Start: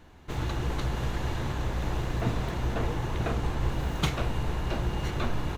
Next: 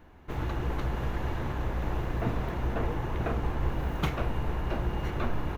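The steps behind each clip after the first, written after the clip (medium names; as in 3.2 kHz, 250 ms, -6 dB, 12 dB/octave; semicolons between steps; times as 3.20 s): graphic EQ 125/4000/8000 Hz -3/-7/-11 dB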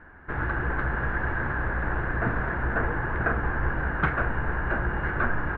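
resonant low-pass 1.6 kHz, resonance Q 7.2; trim +1.5 dB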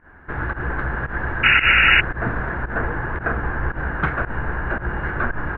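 painted sound noise, 1.43–2.01 s, 1.3–2.9 kHz -17 dBFS; volume shaper 113 bpm, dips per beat 1, -18 dB, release 107 ms; trim +3 dB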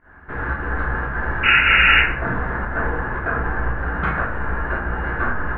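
plate-style reverb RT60 0.6 s, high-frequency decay 0.6×, DRR -3.5 dB; trim -4 dB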